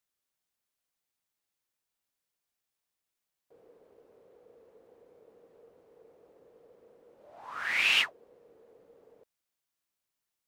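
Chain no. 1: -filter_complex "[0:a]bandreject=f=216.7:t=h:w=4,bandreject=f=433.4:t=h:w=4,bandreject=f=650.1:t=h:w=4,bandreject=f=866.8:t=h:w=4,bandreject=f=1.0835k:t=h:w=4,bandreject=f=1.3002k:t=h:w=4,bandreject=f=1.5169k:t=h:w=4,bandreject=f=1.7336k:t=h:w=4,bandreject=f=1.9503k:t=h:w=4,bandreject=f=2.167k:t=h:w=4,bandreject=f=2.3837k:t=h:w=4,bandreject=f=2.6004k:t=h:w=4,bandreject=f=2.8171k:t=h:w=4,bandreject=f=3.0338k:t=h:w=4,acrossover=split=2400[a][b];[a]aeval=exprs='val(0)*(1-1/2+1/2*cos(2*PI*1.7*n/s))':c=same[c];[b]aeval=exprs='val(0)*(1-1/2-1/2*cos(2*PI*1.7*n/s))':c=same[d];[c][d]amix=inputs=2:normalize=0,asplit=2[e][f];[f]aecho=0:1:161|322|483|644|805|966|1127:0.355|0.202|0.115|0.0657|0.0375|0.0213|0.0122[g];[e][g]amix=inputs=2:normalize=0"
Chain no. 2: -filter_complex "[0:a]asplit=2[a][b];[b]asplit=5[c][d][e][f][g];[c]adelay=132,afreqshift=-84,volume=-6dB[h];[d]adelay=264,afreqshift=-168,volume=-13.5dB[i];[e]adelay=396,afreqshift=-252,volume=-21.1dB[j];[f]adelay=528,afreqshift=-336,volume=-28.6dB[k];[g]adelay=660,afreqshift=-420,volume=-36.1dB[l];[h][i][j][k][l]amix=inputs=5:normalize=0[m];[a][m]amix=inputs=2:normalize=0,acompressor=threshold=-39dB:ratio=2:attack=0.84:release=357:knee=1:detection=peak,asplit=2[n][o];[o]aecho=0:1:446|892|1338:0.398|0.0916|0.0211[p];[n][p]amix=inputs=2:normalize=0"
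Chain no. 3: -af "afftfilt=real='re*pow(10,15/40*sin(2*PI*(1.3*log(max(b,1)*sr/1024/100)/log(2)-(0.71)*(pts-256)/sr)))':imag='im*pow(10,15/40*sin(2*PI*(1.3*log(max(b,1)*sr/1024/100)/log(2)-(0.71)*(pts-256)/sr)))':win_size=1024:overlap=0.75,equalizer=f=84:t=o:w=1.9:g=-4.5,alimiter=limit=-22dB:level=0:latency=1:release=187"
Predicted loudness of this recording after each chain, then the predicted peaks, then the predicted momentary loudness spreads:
-32.5, -38.5, -32.0 LUFS; -16.0, -24.0, -22.0 dBFS; 19, 24, 13 LU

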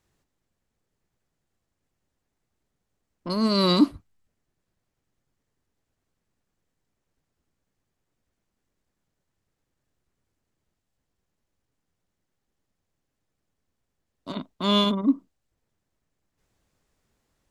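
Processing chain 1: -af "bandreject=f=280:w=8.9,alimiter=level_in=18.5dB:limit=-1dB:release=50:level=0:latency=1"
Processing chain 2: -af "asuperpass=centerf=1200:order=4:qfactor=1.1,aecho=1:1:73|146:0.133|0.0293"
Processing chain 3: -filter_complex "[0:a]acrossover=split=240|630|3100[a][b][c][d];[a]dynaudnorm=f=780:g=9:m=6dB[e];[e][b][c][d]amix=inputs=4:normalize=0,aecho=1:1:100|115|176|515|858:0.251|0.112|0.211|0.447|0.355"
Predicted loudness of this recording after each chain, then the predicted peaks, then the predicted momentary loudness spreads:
-12.0, -33.5, -23.0 LUFS; -1.0, -18.5, -4.5 dBFS; 10, 16, 15 LU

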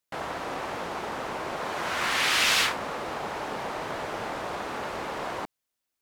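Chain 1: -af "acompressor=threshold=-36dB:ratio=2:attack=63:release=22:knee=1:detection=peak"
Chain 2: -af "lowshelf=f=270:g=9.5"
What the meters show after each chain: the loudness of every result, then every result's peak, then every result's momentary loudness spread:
-31.0, -28.0 LUFS; -14.5, -10.0 dBFS; 8, 11 LU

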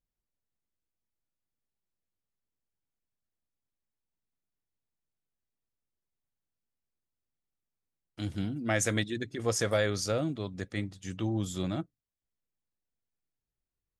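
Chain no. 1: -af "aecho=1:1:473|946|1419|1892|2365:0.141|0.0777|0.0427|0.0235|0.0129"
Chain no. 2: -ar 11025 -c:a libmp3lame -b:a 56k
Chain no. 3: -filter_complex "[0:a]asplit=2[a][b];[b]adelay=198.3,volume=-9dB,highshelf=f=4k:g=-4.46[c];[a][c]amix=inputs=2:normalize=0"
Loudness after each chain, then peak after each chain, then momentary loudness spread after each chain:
-32.0, -33.0, -32.0 LUFS; -14.0, -14.0, -13.5 dBFS; 11, 9, 10 LU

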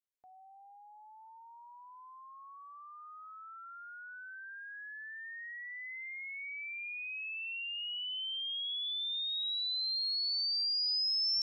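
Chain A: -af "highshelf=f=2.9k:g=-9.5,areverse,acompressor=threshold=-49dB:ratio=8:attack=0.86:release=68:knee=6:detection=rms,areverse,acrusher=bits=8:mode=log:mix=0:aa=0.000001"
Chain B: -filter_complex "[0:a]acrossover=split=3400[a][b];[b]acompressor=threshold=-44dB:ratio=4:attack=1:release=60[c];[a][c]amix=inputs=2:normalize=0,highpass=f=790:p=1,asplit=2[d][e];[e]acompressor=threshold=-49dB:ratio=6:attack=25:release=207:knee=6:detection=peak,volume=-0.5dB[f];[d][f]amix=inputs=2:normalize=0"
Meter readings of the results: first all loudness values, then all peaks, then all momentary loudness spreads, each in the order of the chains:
-49.5, -36.0 LUFS; -39.5, -33.0 dBFS; 9, 18 LU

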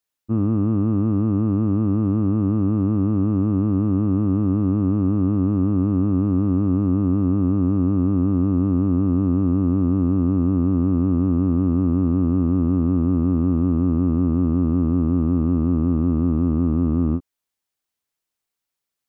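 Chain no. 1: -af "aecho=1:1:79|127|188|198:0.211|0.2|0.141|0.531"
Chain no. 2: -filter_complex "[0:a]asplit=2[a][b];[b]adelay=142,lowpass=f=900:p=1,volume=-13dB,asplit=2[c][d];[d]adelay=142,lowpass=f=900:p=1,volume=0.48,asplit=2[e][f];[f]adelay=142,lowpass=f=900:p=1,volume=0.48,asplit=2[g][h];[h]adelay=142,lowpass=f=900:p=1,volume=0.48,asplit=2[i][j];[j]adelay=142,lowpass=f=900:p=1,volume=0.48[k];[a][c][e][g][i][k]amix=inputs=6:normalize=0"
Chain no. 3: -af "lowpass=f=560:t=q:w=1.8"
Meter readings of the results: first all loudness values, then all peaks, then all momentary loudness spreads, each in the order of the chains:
-18.5, -19.5, -18.5 LUFS; -5.0, -8.0, -8.5 dBFS; 3, 1, 1 LU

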